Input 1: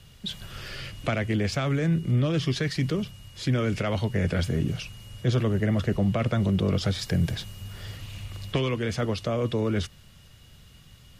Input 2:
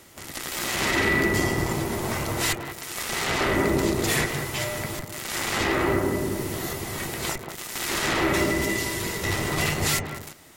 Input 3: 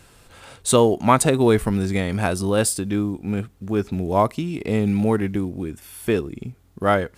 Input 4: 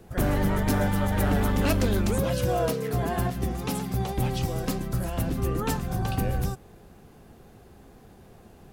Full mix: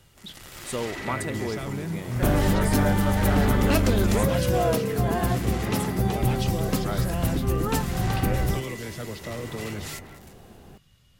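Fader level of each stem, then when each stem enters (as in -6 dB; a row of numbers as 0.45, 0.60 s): -8.5, -13.0, -15.0, +2.5 dB; 0.00, 0.00, 0.00, 2.05 s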